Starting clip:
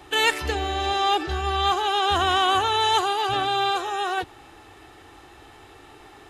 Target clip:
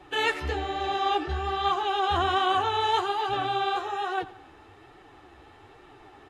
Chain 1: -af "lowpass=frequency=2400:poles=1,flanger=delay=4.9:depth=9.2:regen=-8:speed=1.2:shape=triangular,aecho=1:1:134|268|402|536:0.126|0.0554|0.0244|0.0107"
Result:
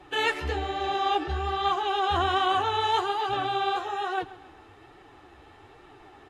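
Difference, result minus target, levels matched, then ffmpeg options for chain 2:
echo 45 ms late
-af "lowpass=frequency=2400:poles=1,flanger=delay=4.9:depth=9.2:regen=-8:speed=1.2:shape=triangular,aecho=1:1:89|178|267|356:0.126|0.0554|0.0244|0.0107"

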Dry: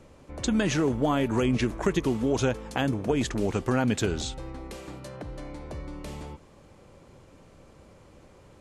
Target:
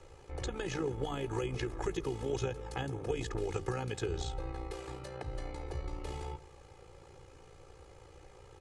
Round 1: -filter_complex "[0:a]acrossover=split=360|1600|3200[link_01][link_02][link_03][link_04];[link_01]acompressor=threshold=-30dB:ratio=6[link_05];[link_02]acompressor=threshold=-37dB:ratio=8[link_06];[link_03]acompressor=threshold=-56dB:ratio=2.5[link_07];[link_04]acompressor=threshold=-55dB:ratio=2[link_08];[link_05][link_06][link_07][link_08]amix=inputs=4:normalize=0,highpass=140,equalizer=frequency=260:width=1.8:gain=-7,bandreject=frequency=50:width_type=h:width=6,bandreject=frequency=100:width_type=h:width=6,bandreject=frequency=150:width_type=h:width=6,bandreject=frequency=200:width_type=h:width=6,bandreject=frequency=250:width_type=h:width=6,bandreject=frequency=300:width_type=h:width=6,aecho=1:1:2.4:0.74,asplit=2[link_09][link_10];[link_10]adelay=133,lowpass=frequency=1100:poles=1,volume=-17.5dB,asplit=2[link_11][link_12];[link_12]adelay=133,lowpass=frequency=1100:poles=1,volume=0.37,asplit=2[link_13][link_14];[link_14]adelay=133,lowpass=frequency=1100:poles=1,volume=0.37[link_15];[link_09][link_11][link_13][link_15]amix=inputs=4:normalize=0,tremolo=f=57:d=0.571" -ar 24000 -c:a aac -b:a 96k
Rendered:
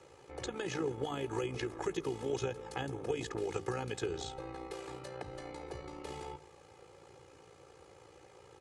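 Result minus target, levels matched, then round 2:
125 Hz band −4.5 dB
-filter_complex "[0:a]acrossover=split=360|1600|3200[link_01][link_02][link_03][link_04];[link_01]acompressor=threshold=-30dB:ratio=6[link_05];[link_02]acompressor=threshold=-37dB:ratio=8[link_06];[link_03]acompressor=threshold=-56dB:ratio=2.5[link_07];[link_04]acompressor=threshold=-55dB:ratio=2[link_08];[link_05][link_06][link_07][link_08]amix=inputs=4:normalize=0,equalizer=frequency=260:width=1.8:gain=-7,bandreject=frequency=50:width_type=h:width=6,bandreject=frequency=100:width_type=h:width=6,bandreject=frequency=150:width_type=h:width=6,bandreject=frequency=200:width_type=h:width=6,bandreject=frequency=250:width_type=h:width=6,bandreject=frequency=300:width_type=h:width=6,aecho=1:1:2.4:0.74,asplit=2[link_09][link_10];[link_10]adelay=133,lowpass=frequency=1100:poles=1,volume=-17.5dB,asplit=2[link_11][link_12];[link_12]adelay=133,lowpass=frequency=1100:poles=1,volume=0.37,asplit=2[link_13][link_14];[link_14]adelay=133,lowpass=frequency=1100:poles=1,volume=0.37[link_15];[link_09][link_11][link_13][link_15]amix=inputs=4:normalize=0,tremolo=f=57:d=0.571" -ar 24000 -c:a aac -b:a 96k

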